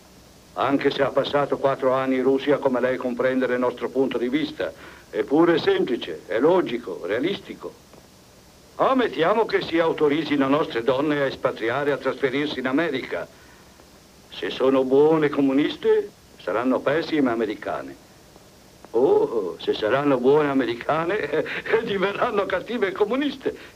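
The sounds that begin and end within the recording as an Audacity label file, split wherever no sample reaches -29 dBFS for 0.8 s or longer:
8.790000	13.240000	sound
14.340000	17.910000	sound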